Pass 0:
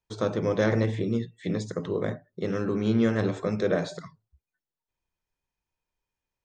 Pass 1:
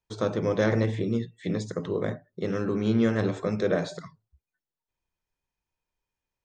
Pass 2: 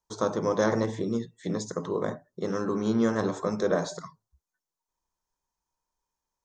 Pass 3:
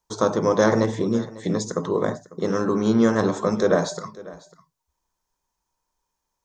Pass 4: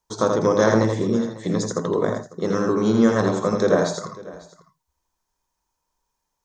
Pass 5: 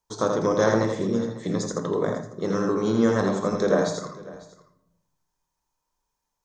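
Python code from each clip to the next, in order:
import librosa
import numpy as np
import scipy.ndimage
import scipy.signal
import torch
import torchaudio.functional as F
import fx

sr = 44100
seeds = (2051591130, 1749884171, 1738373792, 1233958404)

y1 = x
y2 = fx.graphic_eq_15(y1, sr, hz=(100, 1000, 2500, 6300), db=(-8, 9, -10, 9))
y2 = F.gain(torch.from_numpy(y2), -1.0).numpy()
y3 = y2 + 10.0 ** (-19.5 / 20.0) * np.pad(y2, (int(548 * sr / 1000.0), 0))[:len(y2)]
y3 = F.gain(torch.from_numpy(y3), 6.5).numpy()
y4 = y3 + 10.0 ** (-4.5 / 20.0) * np.pad(y3, (int(82 * sr / 1000.0), 0))[:len(y3)]
y5 = fx.room_shoebox(y4, sr, seeds[0], volume_m3=270.0, walls='mixed', distance_m=0.35)
y5 = F.gain(torch.from_numpy(y5), -3.5).numpy()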